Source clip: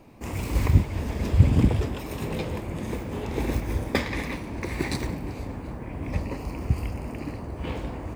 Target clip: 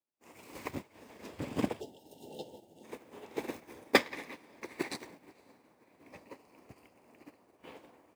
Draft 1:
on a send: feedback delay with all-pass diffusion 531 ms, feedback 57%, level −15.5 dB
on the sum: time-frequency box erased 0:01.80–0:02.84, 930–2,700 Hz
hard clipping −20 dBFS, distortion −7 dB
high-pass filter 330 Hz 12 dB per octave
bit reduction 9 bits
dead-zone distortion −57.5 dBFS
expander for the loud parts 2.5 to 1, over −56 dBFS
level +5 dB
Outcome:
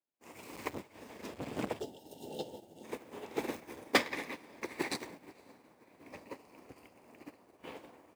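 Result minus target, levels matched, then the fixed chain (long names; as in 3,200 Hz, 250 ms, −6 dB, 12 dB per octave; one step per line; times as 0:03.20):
dead-zone distortion: distortion +12 dB; hard clipping: distortion +7 dB
on a send: feedback delay with all-pass diffusion 531 ms, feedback 57%, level −15.5 dB
on the sum: time-frequency box erased 0:01.80–0:02.84, 930–2,700 Hz
hard clipping −12 dBFS, distortion −14 dB
high-pass filter 330 Hz 12 dB per octave
bit reduction 9 bits
dead-zone distortion −69 dBFS
expander for the loud parts 2.5 to 1, over −56 dBFS
level +5 dB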